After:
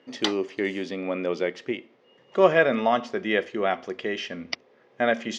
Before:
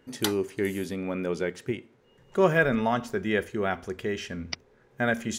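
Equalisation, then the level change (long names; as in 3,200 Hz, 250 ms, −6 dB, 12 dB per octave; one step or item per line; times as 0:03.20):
loudspeaker in its box 360–4,700 Hz, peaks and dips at 410 Hz −6 dB, 900 Hz −6 dB, 1,500 Hz −10 dB, 2,400 Hz −3 dB, 4,000 Hz −5 dB
+8.0 dB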